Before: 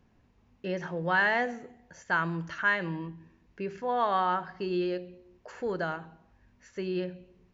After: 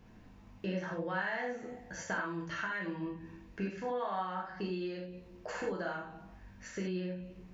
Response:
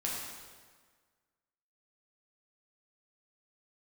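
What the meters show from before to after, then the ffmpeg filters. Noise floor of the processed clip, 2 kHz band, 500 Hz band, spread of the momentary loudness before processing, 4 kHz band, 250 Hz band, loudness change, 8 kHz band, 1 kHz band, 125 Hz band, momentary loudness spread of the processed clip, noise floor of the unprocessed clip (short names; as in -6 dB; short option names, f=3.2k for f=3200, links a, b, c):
-56 dBFS, -9.0 dB, -6.0 dB, 14 LU, -7.0 dB, -3.5 dB, -8.0 dB, n/a, -9.0 dB, -4.5 dB, 13 LU, -66 dBFS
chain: -filter_complex "[0:a]acompressor=threshold=-43dB:ratio=6[a];[1:a]atrim=start_sample=2205,atrim=end_sample=4410[b];[a][b]afir=irnorm=-1:irlink=0,volume=6dB"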